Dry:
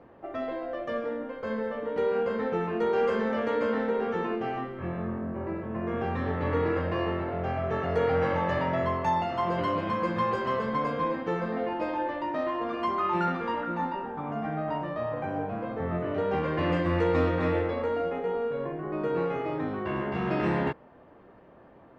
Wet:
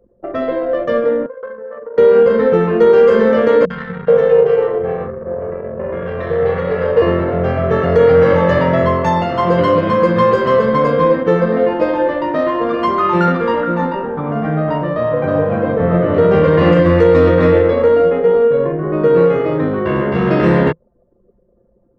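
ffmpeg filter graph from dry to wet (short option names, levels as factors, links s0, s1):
-filter_complex "[0:a]asettb=1/sr,asplit=3[s0][s1][s2];[s0]atrim=end=1.264[s3];[s1]atrim=start=1.26:end=1.98,asetpts=PTS-STARTPTS,afade=t=in:d=0.004:c=qsin,afade=t=out:st=0.716:d=0.004:c=qsin,highshelf=f=2000:t=q:w=1.5:g=-7.5,acompressor=threshold=0.0224:ratio=5:attack=3.2:release=140:knee=1:detection=peak,highpass=f=1000:p=1[s4];[s2]atrim=start=1.976[s5];[s3][s4]acrossfade=d=0.004:c1=hsin:c2=qsin[s6];[s6][s5]acrossfade=d=0.004:c1=qsin:c2=hsin,asettb=1/sr,asplit=3[s7][s8][s9];[s7]atrim=end=3.654[s10];[s8]atrim=start=3.65:end=7.02,asetpts=PTS-STARTPTS,afade=t=in:d=0.004:c=qsin,afade=t=out:st=3.366:d=0.004:c=qsin,lowshelf=f=380:t=q:w=3:g=-6,tremolo=f=290:d=0.519,acrossover=split=240|1100[s11][s12][s13];[s13]adelay=50[s14];[s12]adelay=430[s15];[s11][s15][s14]amix=inputs=3:normalize=0,atrim=end_sample=148617[s16];[s9]atrim=start=7.016[s17];[s10][s16]acrossfade=d=0.004:c1=hsin:c2=qsin[s18];[s18][s17]acrossfade=d=0.004:c1=qsin:c2=hsin,asettb=1/sr,asplit=3[s19][s20][s21];[s19]atrim=end=14.984[s22];[s20]atrim=start=14.98:end=16.8,asetpts=PTS-STARTPTS,afade=t=in:d=0.004:c=qsin,afade=t=out:st=1.816:d=0.004:c=qsin,asplit=2[s23][s24];[s24]adelay=40,volume=0.266[s25];[s23][s25]amix=inputs=2:normalize=0,atrim=end_sample=80262,aecho=1:1:298:0.631,atrim=end_sample=80262[s26];[s21]atrim=start=16.796[s27];[s22][s26]acrossfade=d=0.004:c1=hsin:c2=qsin[s28];[s28][s27]acrossfade=d=0.004:c1=qsin:c2=hsin,anlmdn=0.398,equalizer=f=160:t=o:w=0.33:g=5,equalizer=f=500:t=o:w=0.33:g=8,equalizer=f=800:t=o:w=0.33:g=-8,equalizer=f=2500:t=o:w=0.33:g=-4,alimiter=level_in=5.31:limit=0.891:release=50:level=0:latency=1,volume=0.891"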